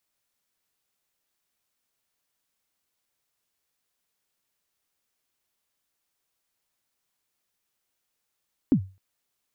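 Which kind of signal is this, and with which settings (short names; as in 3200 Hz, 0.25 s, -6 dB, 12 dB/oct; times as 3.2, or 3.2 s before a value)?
kick drum length 0.26 s, from 310 Hz, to 95 Hz, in 82 ms, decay 0.31 s, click off, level -12 dB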